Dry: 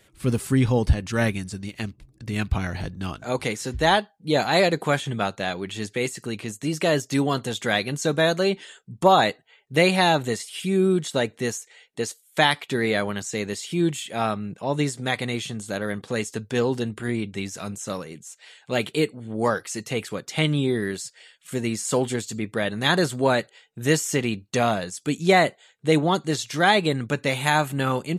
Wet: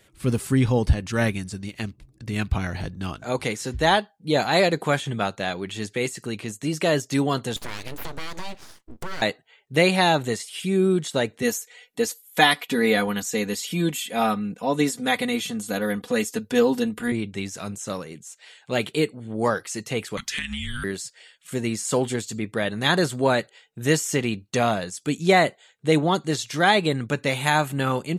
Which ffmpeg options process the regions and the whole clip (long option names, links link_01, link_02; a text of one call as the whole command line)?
ffmpeg -i in.wav -filter_complex "[0:a]asettb=1/sr,asplit=3[link_01][link_02][link_03];[link_01]atrim=end=7.564[link_04];[link_02]atrim=start=7.56:end=9.22,asetpts=PTS-STARTPTS,afade=type=in:duration=0.004:curve=qsin,afade=type=out:start_time=1.656:duration=0.004:curve=qsin,acompressor=threshold=-27dB:ratio=6:attack=3.2:release=140:knee=1:detection=peak,aeval=exprs='abs(val(0))':channel_layout=same[link_05];[link_03]atrim=start=9.216[link_06];[link_04][link_05]acrossfade=duration=0.004:curve1=hsin:curve2=qsin[link_07];[link_07][link_06]acrossfade=duration=0.004:curve1=qsin:curve2=hsin,asettb=1/sr,asplit=3[link_08][link_09][link_10];[link_08]atrim=end=11.424[link_11];[link_09]atrim=start=11.42:end=17.12,asetpts=PTS-STARTPTS,afade=type=in:duration=0.004:curve=qsin,afade=type=out:start_time=5.696:duration=0.004:curve=qsin,equalizer=frequency=12000:width=5:gain=14.5,aecho=1:1:4.1:0.87,atrim=end_sample=251370[link_12];[link_10]atrim=start=17.116[link_13];[link_11][link_12]acrossfade=duration=0.004:curve1=hsin:curve2=qsin[link_14];[link_14][link_13]acrossfade=duration=0.004:curve1=qsin:curve2=hsin,asettb=1/sr,asplit=3[link_15][link_16][link_17];[link_15]atrim=end=20.174[link_18];[link_16]atrim=start=20.17:end=20.84,asetpts=PTS-STARTPTS,afade=type=in:duration=0.004:curve=qsin,afade=type=out:start_time=0.666:duration=0.004:curve=qsin,highshelf=frequency=1600:width_type=q:width=1.5:gain=11,acompressor=threshold=-25dB:ratio=10:attack=3.2:release=140:knee=1:detection=peak,afreqshift=-360[link_19];[link_17]atrim=start=20.836[link_20];[link_18][link_19]acrossfade=duration=0.004:curve1=hsin:curve2=qsin[link_21];[link_21][link_20]acrossfade=duration=0.004:curve1=qsin:curve2=hsin" out.wav